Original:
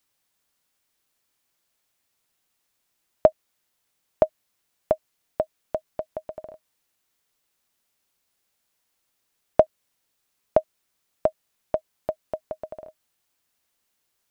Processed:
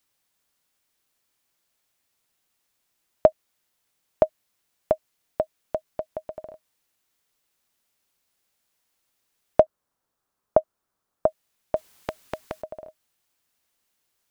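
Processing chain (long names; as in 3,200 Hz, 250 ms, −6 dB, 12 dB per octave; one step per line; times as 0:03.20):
0:09.60–0:11.26: high shelf with overshoot 1,700 Hz −8.5 dB, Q 1.5
0:11.76–0:12.62: every bin compressed towards the loudest bin 2 to 1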